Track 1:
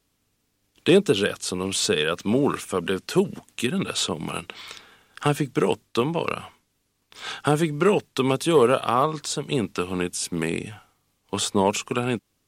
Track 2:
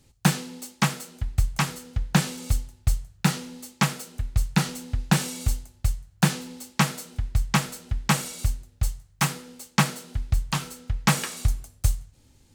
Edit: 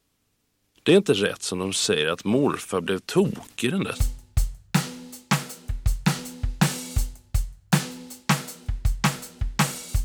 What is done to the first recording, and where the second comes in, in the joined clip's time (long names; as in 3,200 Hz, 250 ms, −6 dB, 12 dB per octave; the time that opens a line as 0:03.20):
track 1
0:03.06–0:03.99: level that may fall only so fast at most 120 dB per second
0:03.95: continue with track 2 from 0:02.45, crossfade 0.08 s